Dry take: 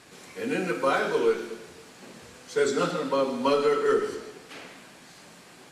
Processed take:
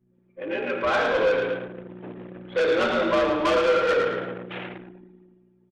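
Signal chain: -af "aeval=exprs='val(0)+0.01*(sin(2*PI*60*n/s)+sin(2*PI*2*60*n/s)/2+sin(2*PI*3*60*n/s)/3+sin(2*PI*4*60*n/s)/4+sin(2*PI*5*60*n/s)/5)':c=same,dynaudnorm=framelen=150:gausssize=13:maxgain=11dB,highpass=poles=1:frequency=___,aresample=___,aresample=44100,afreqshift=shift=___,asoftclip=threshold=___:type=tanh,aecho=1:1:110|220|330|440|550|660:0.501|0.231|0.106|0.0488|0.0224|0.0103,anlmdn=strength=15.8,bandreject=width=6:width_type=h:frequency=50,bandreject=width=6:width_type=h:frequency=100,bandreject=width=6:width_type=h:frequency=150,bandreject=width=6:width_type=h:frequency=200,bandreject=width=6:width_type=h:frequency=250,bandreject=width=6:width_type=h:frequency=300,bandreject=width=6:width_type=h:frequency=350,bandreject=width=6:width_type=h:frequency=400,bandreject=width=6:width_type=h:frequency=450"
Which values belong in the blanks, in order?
180, 8000, 63, -18.5dB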